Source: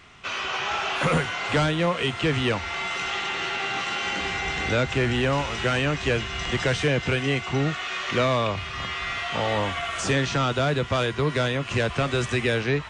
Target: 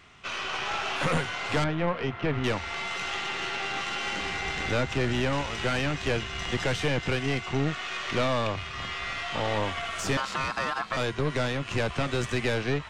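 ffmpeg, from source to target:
-filter_complex "[0:a]asettb=1/sr,asplit=3[s0][s1][s2];[s0]atrim=end=1.644[s3];[s1]atrim=start=1.64:end=2.44,asetpts=PTS-STARTPTS,afade=t=in:d=0.004:c=qsin,afade=t=out:st=0.796:d=0.004:c=qsin,lowpass=1900[s4];[s2]atrim=start=2.436[s5];[s3][s4]acrossfade=d=0.004:c1=hsin:c2=qsin[s6];[s6][s5]acrossfade=d=0.004:c1=qsin:c2=hsin,aeval=exprs='(tanh(8.91*val(0)+0.7)-tanh(0.7))/8.91':c=same,asettb=1/sr,asplit=3[s7][s8][s9];[s7]atrim=end=10.174[s10];[s8]atrim=start=10.17:end=10.97,asetpts=PTS-STARTPTS,afade=t=in:d=0.004:c=qsin,afade=t=out:st=0.796:d=0.004:c=qsin,aeval=exprs='val(0)*sin(2*PI*1200*n/s)':c=same[s11];[s9]atrim=start=10.966[s12];[s10][s11]acrossfade=d=0.004:c1=hsin:c2=qsin[s13];[s13][s12]acrossfade=d=0.004:c1=qsin:c2=hsin"

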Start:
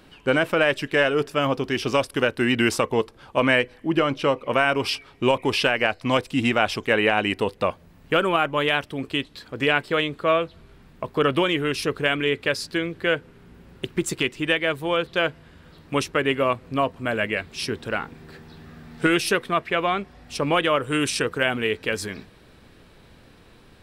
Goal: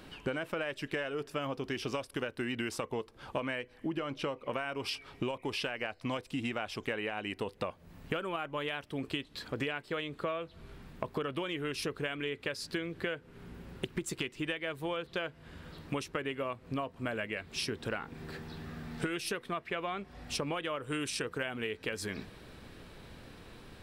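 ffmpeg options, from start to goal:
-af "acompressor=threshold=0.0251:ratio=16"

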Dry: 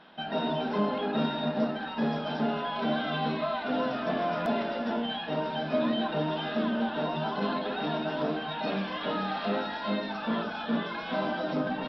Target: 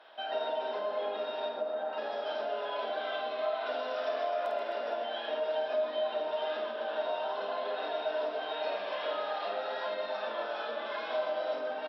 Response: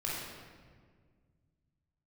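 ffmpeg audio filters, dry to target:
-filter_complex "[0:a]asettb=1/sr,asplit=3[s0][s1][s2];[s0]atrim=end=1.494[s3];[s1]atrim=start=1.49:end=1.93,asetpts=PTS-STARTPTS,afade=t=in:d=0.004:c=qsin,afade=t=out:st=0.436:d=0.004:c=qsin,lowpass=1300[s4];[s2]atrim=start=1.926[s5];[s3][s4]acrossfade=d=0.004:c1=hsin:c2=qsin[s6];[s6][s5]acrossfade=d=0.004:c1=qsin:c2=hsin,asettb=1/sr,asplit=3[s7][s8][s9];[s7]atrim=end=3.664[s10];[s8]atrim=start=3.66:end=4.31,asetpts=PTS-STARTPTS,afade=t=in:d=0.004:c=qsin,afade=t=out:st=0.646:d=0.004:c=qsin,aemphasis=mode=production:type=50kf[s11];[s9]atrim=start=4.306[s12];[s10][s11]acrossfade=d=0.004:c1=hsin:c2=qsin[s13];[s13][s12]acrossfade=d=0.004:c1=qsin:c2=hsin,aecho=1:1:50|130|258|462.8|790.5:0.631|0.398|0.251|0.158|0.1,asplit=2[s14][s15];[1:a]atrim=start_sample=2205,asetrate=57330,aresample=44100,adelay=77[s16];[s15][s16]afir=irnorm=-1:irlink=0,volume=0.299[s17];[s14][s17]amix=inputs=2:normalize=0,acompressor=threshold=0.0355:ratio=6,highpass=f=410:w=0.5412,highpass=f=410:w=1.3066,equalizer=f=610:w=5:g=7.5,volume=0.708"

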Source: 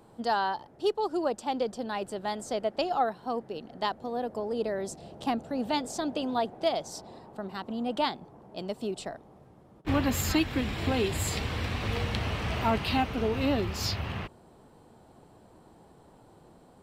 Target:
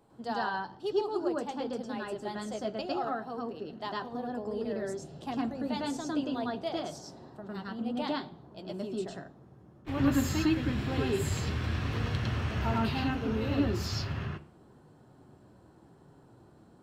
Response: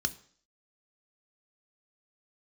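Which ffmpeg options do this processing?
-filter_complex "[0:a]flanger=delay=7:depth=2.6:regen=-49:speed=1:shape=triangular,asplit=2[s0][s1];[1:a]atrim=start_sample=2205,highshelf=f=3600:g=-8,adelay=104[s2];[s1][s2]afir=irnorm=-1:irlink=0,volume=1[s3];[s0][s3]amix=inputs=2:normalize=0,volume=0.596"

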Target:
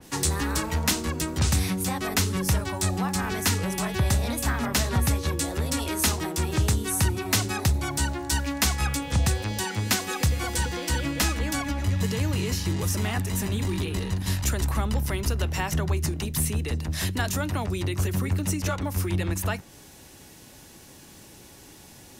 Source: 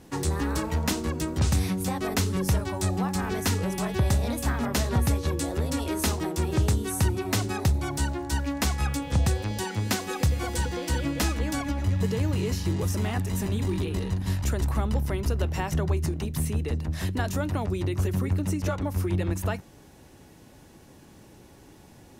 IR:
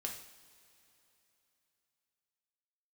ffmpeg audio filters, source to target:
-filter_complex "[0:a]highshelf=f=2000:g=11.5,acrossover=split=340|600|2000[s0][s1][s2][s3];[s1]alimiter=level_in=4.22:limit=0.0631:level=0:latency=1,volume=0.237[s4];[s0][s4][s2][s3]amix=inputs=4:normalize=0,adynamicequalizer=threshold=0.00891:dfrequency=2700:dqfactor=0.7:tfrequency=2700:tqfactor=0.7:attack=5:release=100:ratio=0.375:range=3:mode=cutabove:tftype=highshelf"

